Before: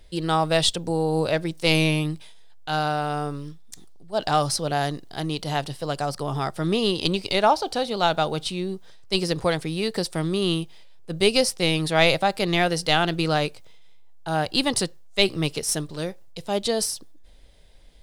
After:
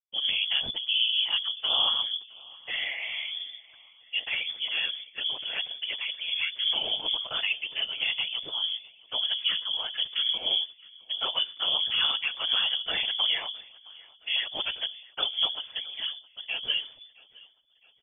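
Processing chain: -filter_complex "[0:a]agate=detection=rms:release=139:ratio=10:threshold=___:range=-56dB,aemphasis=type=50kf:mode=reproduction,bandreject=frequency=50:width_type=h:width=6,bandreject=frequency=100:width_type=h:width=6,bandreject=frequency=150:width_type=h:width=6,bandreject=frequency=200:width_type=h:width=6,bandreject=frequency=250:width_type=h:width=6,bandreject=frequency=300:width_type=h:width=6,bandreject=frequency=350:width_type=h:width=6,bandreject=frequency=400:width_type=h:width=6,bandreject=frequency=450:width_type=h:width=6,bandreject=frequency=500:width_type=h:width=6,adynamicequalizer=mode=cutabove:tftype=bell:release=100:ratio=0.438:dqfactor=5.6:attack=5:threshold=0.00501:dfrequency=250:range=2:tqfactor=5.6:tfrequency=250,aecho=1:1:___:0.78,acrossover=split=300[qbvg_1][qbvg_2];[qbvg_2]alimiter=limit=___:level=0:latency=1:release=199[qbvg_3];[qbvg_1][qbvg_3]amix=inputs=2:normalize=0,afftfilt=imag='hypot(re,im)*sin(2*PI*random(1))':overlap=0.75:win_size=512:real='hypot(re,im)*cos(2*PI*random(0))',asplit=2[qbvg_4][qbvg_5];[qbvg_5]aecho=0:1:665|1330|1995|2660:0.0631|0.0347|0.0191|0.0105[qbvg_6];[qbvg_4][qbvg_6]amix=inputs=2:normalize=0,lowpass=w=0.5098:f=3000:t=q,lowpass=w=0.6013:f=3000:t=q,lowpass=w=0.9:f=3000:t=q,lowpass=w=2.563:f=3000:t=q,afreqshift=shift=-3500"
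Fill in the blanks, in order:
-35dB, 6, -14dB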